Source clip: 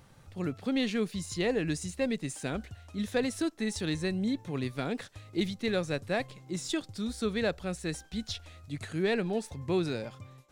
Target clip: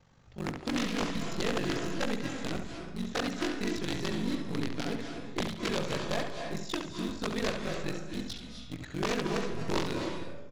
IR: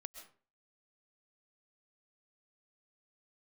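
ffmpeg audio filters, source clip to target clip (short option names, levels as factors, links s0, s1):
-filter_complex "[0:a]aeval=exprs='val(0)*sin(2*PI*24*n/s)':c=same,aresample=16000,aeval=exprs='(mod(14.1*val(0)+1,2)-1)/14.1':c=same,aresample=44100,acrossover=split=6100[s0][s1];[s1]acompressor=threshold=0.00224:ratio=4:attack=1:release=60[s2];[s0][s2]amix=inputs=2:normalize=0,asplit=2[s3][s4];[s4]acrusher=bits=3:dc=4:mix=0:aa=0.000001,volume=0.501[s5];[s3][s5]amix=inputs=2:normalize=0,asplit=2[s6][s7];[s7]adelay=70,lowpass=f=4500:p=1,volume=0.501,asplit=2[s8][s9];[s9]adelay=70,lowpass=f=4500:p=1,volume=0.33,asplit=2[s10][s11];[s11]adelay=70,lowpass=f=4500:p=1,volume=0.33,asplit=2[s12][s13];[s13]adelay=70,lowpass=f=4500:p=1,volume=0.33[s14];[s6][s8][s10][s12][s14]amix=inputs=5:normalize=0[s15];[1:a]atrim=start_sample=2205,asetrate=22932,aresample=44100[s16];[s15][s16]afir=irnorm=-1:irlink=0"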